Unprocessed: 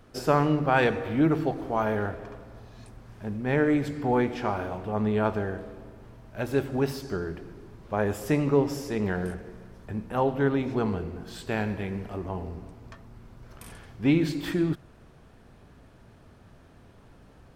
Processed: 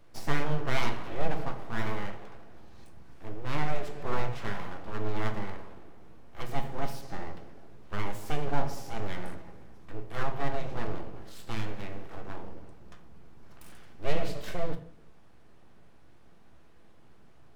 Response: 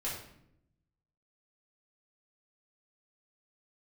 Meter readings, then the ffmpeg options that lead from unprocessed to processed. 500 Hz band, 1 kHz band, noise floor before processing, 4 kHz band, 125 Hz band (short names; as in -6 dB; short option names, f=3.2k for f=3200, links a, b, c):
-10.0 dB, -6.0 dB, -54 dBFS, -1.5 dB, -6.5 dB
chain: -filter_complex "[0:a]aeval=exprs='abs(val(0))':c=same,asplit=2[a][b];[1:a]atrim=start_sample=2205,asetrate=61740,aresample=44100[c];[b][c]afir=irnorm=-1:irlink=0,volume=-4.5dB[d];[a][d]amix=inputs=2:normalize=0,volume=-7.5dB"